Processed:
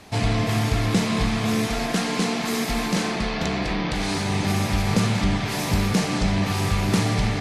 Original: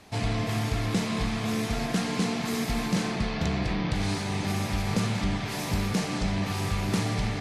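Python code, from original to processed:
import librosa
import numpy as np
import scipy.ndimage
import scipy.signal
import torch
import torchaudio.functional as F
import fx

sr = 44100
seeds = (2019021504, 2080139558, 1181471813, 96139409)

y = fx.peak_eq(x, sr, hz=95.0, db=-11.5, octaves=1.4, at=(1.67, 4.15))
y = y * 10.0 ** (6.0 / 20.0)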